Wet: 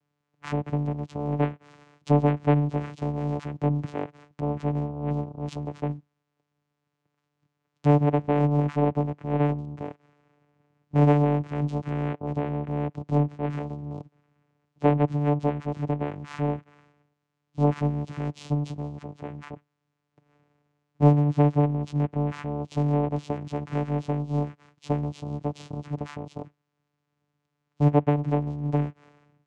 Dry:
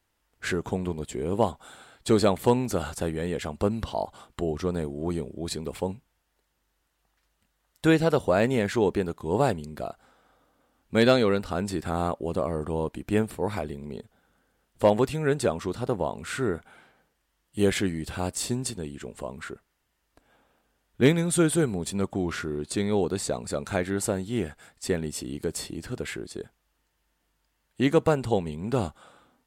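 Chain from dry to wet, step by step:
treble cut that deepens with the level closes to 1,700 Hz, closed at −19.5 dBFS
channel vocoder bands 4, saw 146 Hz
level +2 dB

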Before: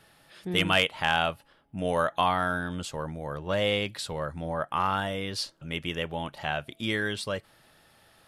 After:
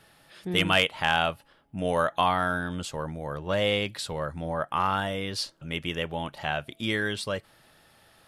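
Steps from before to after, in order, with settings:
level +1 dB

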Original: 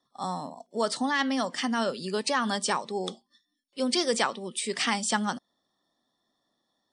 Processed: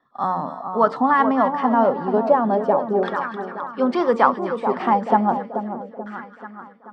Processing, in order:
hum removal 91.13 Hz, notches 6
on a send: echo with a time of its own for lows and highs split 1,400 Hz, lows 434 ms, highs 261 ms, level −8 dB
on the sum: auto-filter low-pass saw down 0.33 Hz 580–1,700 Hz
level +7.5 dB

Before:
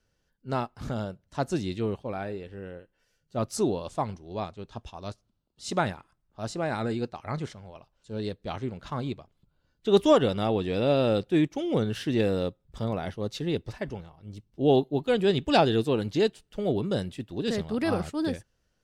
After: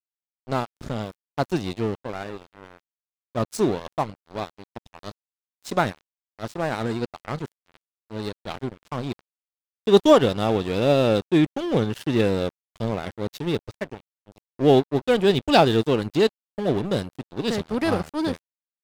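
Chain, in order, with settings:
0:01.00–0:01.46: surface crackle 450 per second −47 dBFS
dead-zone distortion −36.5 dBFS
level +6 dB

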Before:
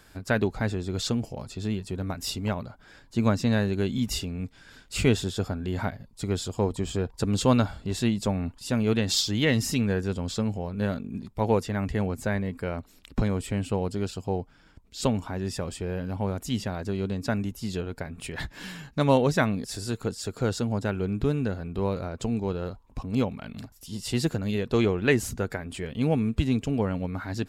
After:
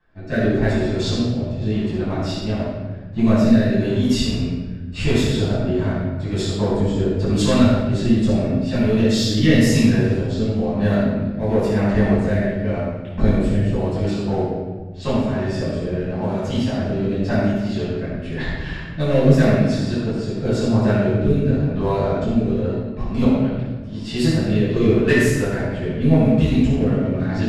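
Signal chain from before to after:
hollow resonant body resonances 630/1,800 Hz, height 7 dB
leveller curve on the samples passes 2
low-pass that shuts in the quiet parts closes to 2,200 Hz, open at −13.5 dBFS
rotating-speaker cabinet horn 0.9 Hz
rectangular room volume 1,000 cubic metres, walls mixed, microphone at 9.2 metres
level −13 dB

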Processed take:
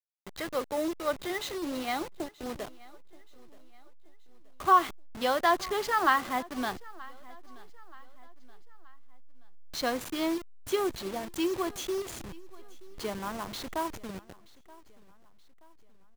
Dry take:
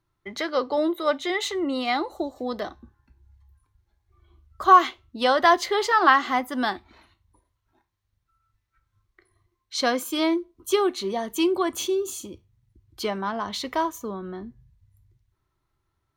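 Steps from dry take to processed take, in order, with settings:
hold until the input has moved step −28 dBFS
on a send: repeating echo 927 ms, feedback 44%, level −22 dB
on the sum: level −7 dB

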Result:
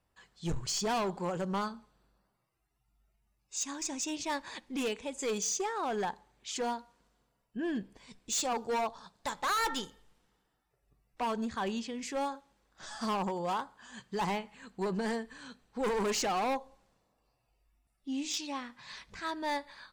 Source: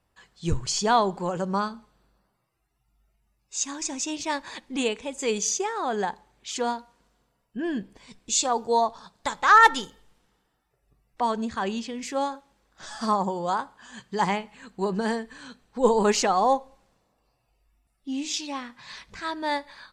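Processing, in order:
gain into a clipping stage and back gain 23.5 dB
level −5 dB

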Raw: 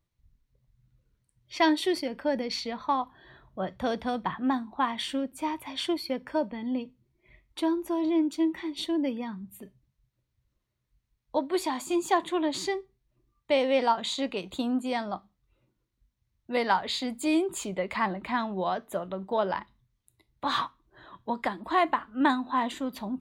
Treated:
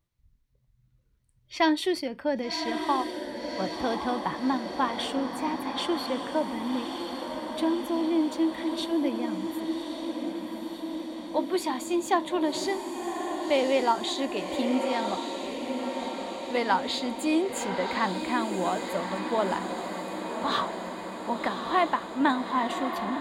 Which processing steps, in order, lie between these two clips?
feedback delay with all-pass diffusion 1,125 ms, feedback 68%, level −6 dB

